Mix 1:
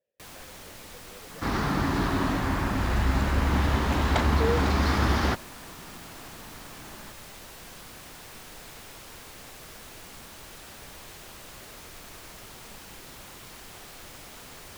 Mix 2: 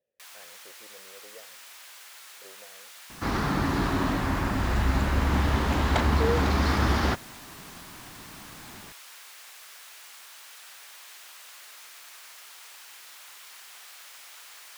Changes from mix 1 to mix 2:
first sound: add high-pass filter 1,200 Hz 12 dB per octave
second sound: entry +1.80 s

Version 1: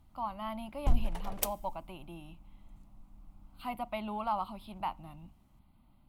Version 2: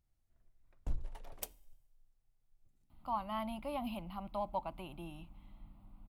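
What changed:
speech: entry +2.90 s
background −10.5 dB

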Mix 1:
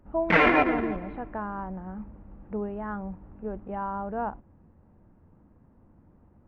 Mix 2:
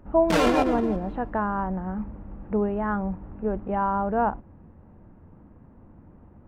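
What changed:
speech +7.5 dB
background: remove low-pass with resonance 2,100 Hz, resonance Q 4.3

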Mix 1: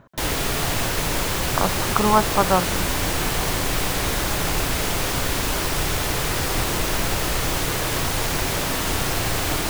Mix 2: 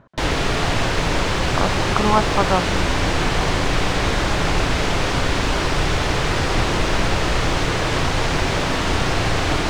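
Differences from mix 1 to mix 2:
background +5.0 dB
master: add high-frequency loss of the air 110 metres

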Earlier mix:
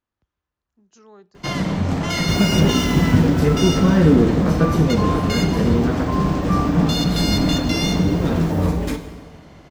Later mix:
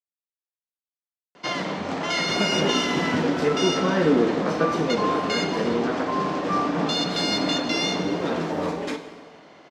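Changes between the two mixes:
speech: muted
master: add band-pass filter 360–5,600 Hz

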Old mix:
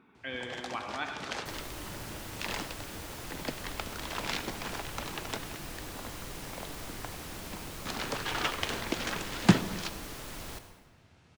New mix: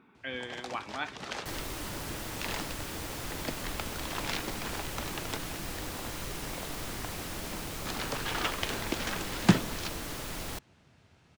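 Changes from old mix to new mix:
speech +3.5 dB
second sound +6.0 dB
reverb: off

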